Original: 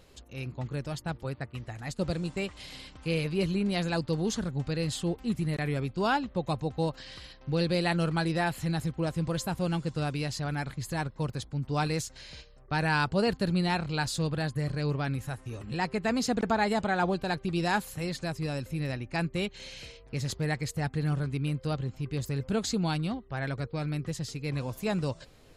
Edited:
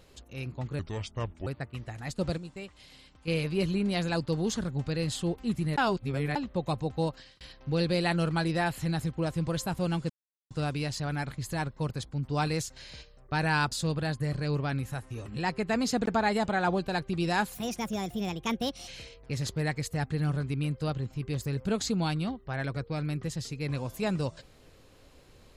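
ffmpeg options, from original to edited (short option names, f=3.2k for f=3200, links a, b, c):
-filter_complex "[0:a]asplit=12[a][b][c][d][e][f][g][h][i][j][k][l];[a]atrim=end=0.794[m];[b]atrim=start=0.79:end=1.27,asetpts=PTS-STARTPTS,asetrate=31311,aresample=44100,atrim=end_sample=29814,asetpts=PTS-STARTPTS[n];[c]atrim=start=1.266:end=2.182[o];[d]atrim=start=2.178:end=3.082,asetpts=PTS-STARTPTS,volume=-9dB[p];[e]atrim=start=3.078:end=5.582[q];[f]atrim=start=5.578:end=6.162,asetpts=PTS-STARTPTS,areverse[r];[g]atrim=start=6.158:end=7.21,asetpts=PTS-STARTPTS,afade=t=out:st=0.712:d=0.34[s];[h]atrim=start=7.21:end=9.9,asetpts=PTS-STARTPTS,afade=t=in:d=0.004:c=hsin,afade=t=out:st=2.686:d=0.004:c=hsin,apad=pad_dur=0.41[t];[i]atrim=start=9.9:end=13.112,asetpts=PTS-STARTPTS,afade=t=in:d=0.004:c=hsin[u];[j]atrim=start=14.068:end=17.904[v];[k]atrim=start=17.9:end=19.71,asetpts=PTS-STARTPTS,asetrate=59976,aresample=44100[w];[l]atrim=start=19.706[x];[m][n]acrossfade=d=0.004:c1=hsin:c2=hsin[y];[y][o]acrossfade=d=0.004:c1=hsin:c2=hsin[z];[z][p]acrossfade=d=0.004:c1=hsin:c2=hsin[aa];[aa][q]acrossfade=d=0.004:c1=hsin:c2=hsin[ab];[ab][r]acrossfade=d=0.004:c1=hsin:c2=hsin[ac];[s][t][u]concat=n=3:v=0:a=1[ad];[ac][ad]acrossfade=d=0.004:c1=hsin:c2=hsin[ae];[ae][v]acrossfade=d=0.004:c1=hsin:c2=hsin[af];[af][w]acrossfade=d=0.004:c1=hsin:c2=hsin[ag];[ag][x]acrossfade=d=0.004:c1=hsin:c2=hsin"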